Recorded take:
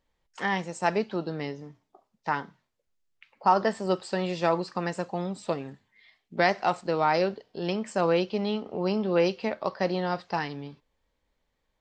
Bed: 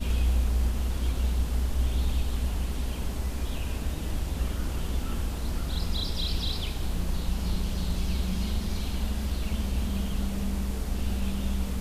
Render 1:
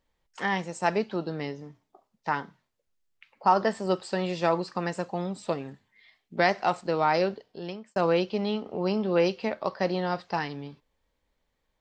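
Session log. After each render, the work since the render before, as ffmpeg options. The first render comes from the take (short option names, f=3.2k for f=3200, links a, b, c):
-filter_complex "[0:a]asplit=2[a][b];[a]atrim=end=7.96,asetpts=PTS-STARTPTS,afade=t=out:st=7.34:d=0.62[c];[b]atrim=start=7.96,asetpts=PTS-STARTPTS,afade=t=in:d=0.004:c=hsin[d];[c][d]concat=n=2:v=0:a=1"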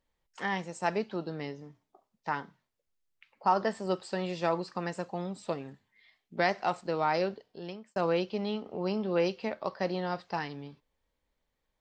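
-af "volume=-4.5dB"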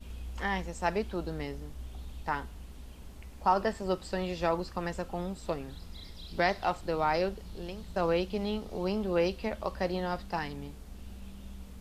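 -filter_complex "[1:a]volume=-16.5dB[a];[0:a][a]amix=inputs=2:normalize=0"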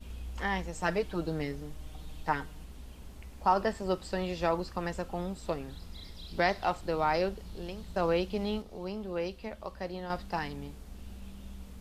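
-filter_complex "[0:a]asettb=1/sr,asplit=3[a][b][c];[a]atrim=end=0.724[d];[b]atrim=start=0.72:end=2.64,asetpts=PTS-STARTPTS,afade=t=in:d=0.004:c=qsin,afade=t=out:st=1.916:d=0.004:c=qsin,aecho=1:1:6.5:0.65,atrim=end_sample=84672[e];[c]atrim=start=2.636[f];[d][e]acrossfade=d=0.004:c1=hsin:c2=qsin[g];[g][f]acrossfade=d=0.004:c1=qsin:c2=hsin,asplit=3[h][i][j];[h]atrim=end=8.622[k];[i]atrim=start=8.618:end=10.102,asetpts=PTS-STARTPTS,volume=-6.5dB[l];[j]atrim=start=10.098[m];[k][l]acrossfade=d=0.004:c1=hsin:c2=hsin[n];[n][m]acrossfade=d=0.004:c1=hsin:c2=hsin"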